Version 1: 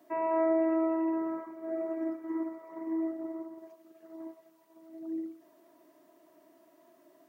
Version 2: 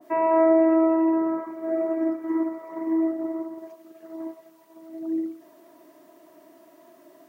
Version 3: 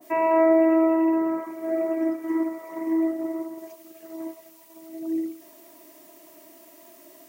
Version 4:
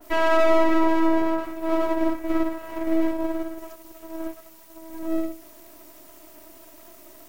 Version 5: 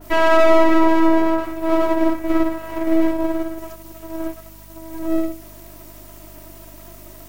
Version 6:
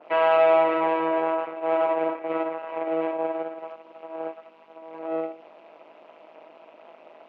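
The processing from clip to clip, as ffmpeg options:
-af "adynamicequalizer=threshold=0.00708:dfrequency=1500:dqfactor=0.7:tfrequency=1500:tqfactor=0.7:attack=5:release=100:ratio=0.375:range=2:mode=cutabove:tftype=highshelf,volume=9dB"
-af "aexciter=amount=3.1:drive=3.1:freq=2.1k"
-af "aeval=exprs='max(val(0),0)':c=same,volume=6dB"
-af "aeval=exprs='val(0)+0.00355*(sin(2*PI*50*n/s)+sin(2*PI*2*50*n/s)/2+sin(2*PI*3*50*n/s)/3+sin(2*PI*4*50*n/s)/4+sin(2*PI*5*50*n/s)/5)':c=same,volume=5.5dB"
-af "tremolo=f=160:d=0.857,asoftclip=type=tanh:threshold=-8dB,highpass=f=340:w=0.5412,highpass=f=340:w=1.3066,equalizer=f=340:t=q:w=4:g=-6,equalizer=f=580:t=q:w=4:g=5,equalizer=f=830:t=q:w=4:g=3,equalizer=f=1.8k:t=q:w=4:g=-6,equalizer=f=2.6k:t=q:w=4:g=5,lowpass=f=2.7k:w=0.5412,lowpass=f=2.7k:w=1.3066"

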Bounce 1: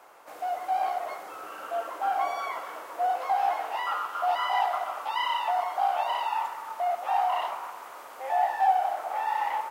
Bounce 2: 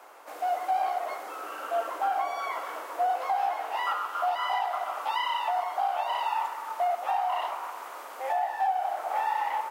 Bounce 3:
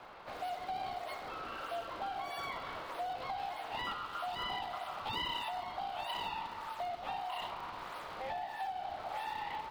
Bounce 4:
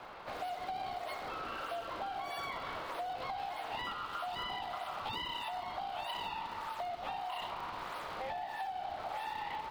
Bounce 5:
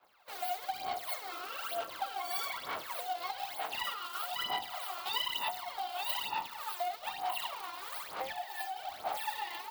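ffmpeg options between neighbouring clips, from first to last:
-af "alimiter=limit=-21.5dB:level=0:latency=1:release=480,highpass=f=230:w=0.5412,highpass=f=230:w=1.3066,volume=2.5dB"
-filter_complex "[0:a]equalizer=f=4.2k:t=o:w=0.97:g=11,acrossover=split=300|3000[a][b][c];[b]acompressor=threshold=-40dB:ratio=3[d];[a][d][c]amix=inputs=3:normalize=0,acrossover=split=760|1500|4000[e][f][g][h];[h]acrusher=samples=29:mix=1:aa=0.000001:lfo=1:lforange=46.4:lforate=1.6[i];[e][f][g][i]amix=inputs=4:normalize=0,volume=-2dB"
-af "acompressor=threshold=-39dB:ratio=6,volume=3dB"
-af "agate=range=-33dB:threshold=-36dB:ratio=3:detection=peak,aemphasis=mode=production:type=riaa,aphaser=in_gain=1:out_gain=1:delay=2.9:decay=0.69:speed=1.1:type=sinusoidal"

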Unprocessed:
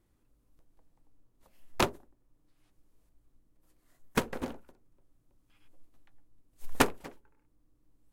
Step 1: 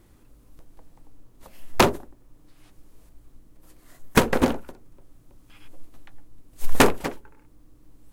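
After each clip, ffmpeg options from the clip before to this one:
-af "alimiter=level_in=17.5dB:limit=-1dB:release=50:level=0:latency=1,volume=-1dB"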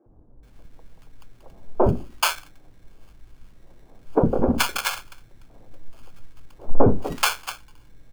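-filter_complex "[0:a]acrusher=samples=23:mix=1:aa=0.000001,acrossover=split=280|920[a][b][c];[a]adelay=60[d];[c]adelay=430[e];[d][b][e]amix=inputs=3:normalize=0,volume=3.5dB"

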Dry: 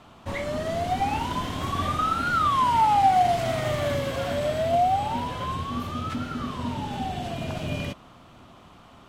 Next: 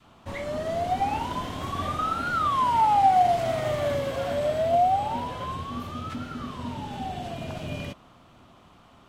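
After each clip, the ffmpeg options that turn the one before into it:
-af "adynamicequalizer=threshold=0.0251:dfrequency=610:dqfactor=0.93:tfrequency=610:tqfactor=0.93:attack=5:release=100:ratio=0.375:range=2.5:mode=boostabove:tftype=bell,volume=-4dB"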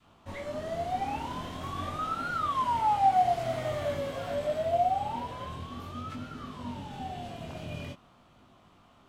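-af "flanger=delay=19:depth=6.8:speed=0.47,volume=-2.5dB"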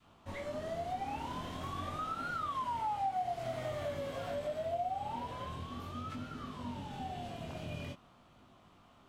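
-af "acompressor=threshold=-34dB:ratio=2.5,volume=-2.5dB"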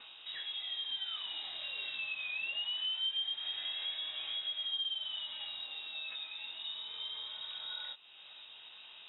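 -af "acompressor=mode=upward:threshold=-41dB:ratio=2.5,lowpass=f=3.3k:t=q:w=0.5098,lowpass=f=3.3k:t=q:w=0.6013,lowpass=f=3.3k:t=q:w=0.9,lowpass=f=3.3k:t=q:w=2.563,afreqshift=-3900,volume=-1dB"

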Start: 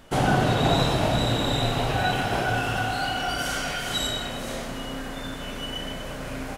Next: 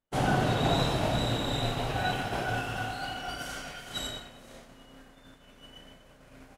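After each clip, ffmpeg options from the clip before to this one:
-af "agate=range=-33dB:threshold=-22dB:ratio=3:detection=peak,volume=-5dB"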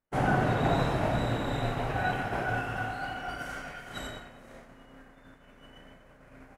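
-af "highshelf=f=2.6k:t=q:w=1.5:g=-7.5"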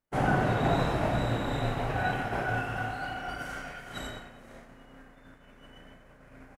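-filter_complex "[0:a]asplit=2[a][b];[b]adelay=35,volume=-13dB[c];[a][c]amix=inputs=2:normalize=0"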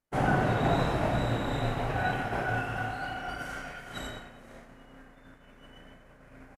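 -af "aresample=32000,aresample=44100"

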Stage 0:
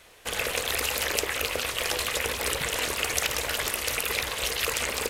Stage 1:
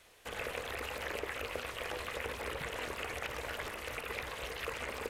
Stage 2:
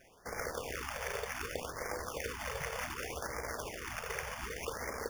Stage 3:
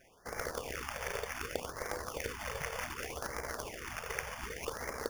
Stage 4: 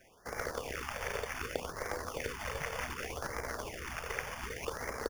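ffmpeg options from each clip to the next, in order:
-filter_complex "[0:a]acrossover=split=2500[a][b];[b]acompressor=threshold=-41dB:ratio=4:attack=1:release=60[c];[a][c]amix=inputs=2:normalize=0,volume=-8dB"
-af "acrusher=samples=11:mix=1:aa=0.000001,afftfilt=real='re*(1-between(b*sr/1024,250*pow(3400/250,0.5+0.5*sin(2*PI*0.66*pts/sr))/1.41,250*pow(3400/250,0.5+0.5*sin(2*PI*0.66*pts/sr))*1.41))':imag='im*(1-between(b*sr/1024,250*pow(3400/250,0.5+0.5*sin(2*PI*0.66*pts/sr))/1.41,250*pow(3400/250,0.5+0.5*sin(2*PI*0.66*pts/sr))*1.41))':win_size=1024:overlap=0.75,volume=1dB"
-af "aeval=exprs='0.0708*(cos(1*acos(clip(val(0)/0.0708,-1,1)))-cos(1*PI/2))+0.00708*(cos(2*acos(clip(val(0)/0.0708,-1,1)))-cos(2*PI/2))+0.0126*(cos(3*acos(clip(val(0)/0.0708,-1,1)))-cos(3*PI/2))+0.00501*(cos(4*acos(clip(val(0)/0.0708,-1,1)))-cos(4*PI/2))':c=same,volume=5dB"
-filter_complex "[0:a]acrossover=split=330|3300[a][b][c];[a]aecho=1:1:635:0.531[d];[c]asoftclip=type=tanh:threshold=-39dB[e];[d][b][e]amix=inputs=3:normalize=0,volume=1dB"

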